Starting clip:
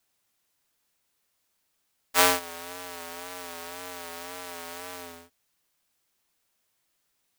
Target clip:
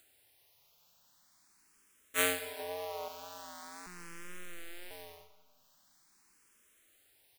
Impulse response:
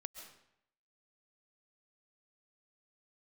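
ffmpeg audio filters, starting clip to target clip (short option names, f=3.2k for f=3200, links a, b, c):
-filter_complex "[0:a]asettb=1/sr,asplit=3[a][b][c];[a]atrim=end=2.594[d];[b]atrim=start=2.59:end=3.08,asetpts=PTS-STARTPTS,afade=t=in:d=0.004:c=qsin,afade=t=out:st=0.486:d=0.004:c=qsin,equalizer=f=490:t=o:w=2.7:g=11.5[e];[c]atrim=start=3.076[f];[d][e]acrossfade=d=0.004:c1=hsin:c2=qsin[g];[g][f]acrossfade=d=0.004:c1=qsin:c2=hsin,asettb=1/sr,asplit=3[h][i][j];[h]atrim=end=3.864[k];[i]atrim=start=3.86:end=4.91,asetpts=PTS-STARTPTS,afade=t=in:d=0.004:c=qsin,afade=t=out:st=1.046:d=0.004:c=qsin,aeval=exprs='abs(val(0))':c=same[l];[j]atrim=start=4.906[m];[k][l]acrossfade=d=0.004:c1=hsin:c2=qsin[n];[n][m]acrossfade=d=0.004:c1=qsin:c2=hsin,acompressor=mode=upward:threshold=-44dB:ratio=2.5,aecho=1:1:191|382|573|764:0.133|0.0667|0.0333|0.0167,asplit=2[o][p];[1:a]atrim=start_sample=2205,asetrate=33516,aresample=44100[q];[p][q]afir=irnorm=-1:irlink=0,volume=-7.5dB[r];[o][r]amix=inputs=2:normalize=0,asplit=2[s][t];[t]afreqshift=0.43[u];[s][u]amix=inputs=2:normalize=1,volume=-8dB"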